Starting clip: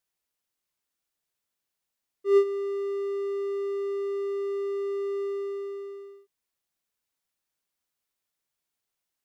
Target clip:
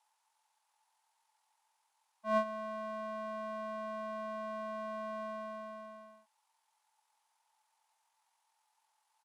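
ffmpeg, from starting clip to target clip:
-af "highpass=f=1600:t=q:w=13,asetrate=24046,aresample=44100,atempo=1.83401,volume=1.5"

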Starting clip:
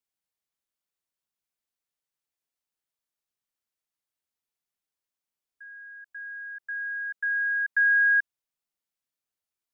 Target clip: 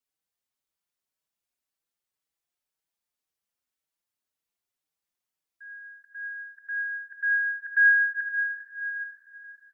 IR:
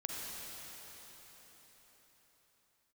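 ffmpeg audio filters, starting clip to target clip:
-filter_complex "[0:a]aecho=1:1:835|1670|2505:0.168|0.0638|0.0242,asplit=2[s0][s1];[1:a]atrim=start_sample=2205,asetrate=52920,aresample=44100,adelay=84[s2];[s1][s2]afir=irnorm=-1:irlink=0,volume=0.501[s3];[s0][s3]amix=inputs=2:normalize=0,asplit=2[s4][s5];[s5]adelay=5,afreqshift=1.9[s6];[s4][s6]amix=inputs=2:normalize=1,volume=1.41"

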